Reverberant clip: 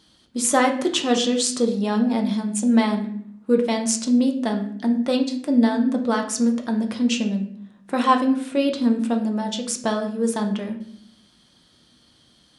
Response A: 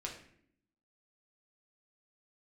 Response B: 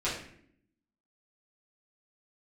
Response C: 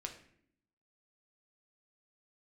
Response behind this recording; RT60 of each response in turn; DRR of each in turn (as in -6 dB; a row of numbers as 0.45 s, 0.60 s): C; 0.65 s, 0.65 s, 0.65 s; -1.5 dB, -10.5 dB, 2.5 dB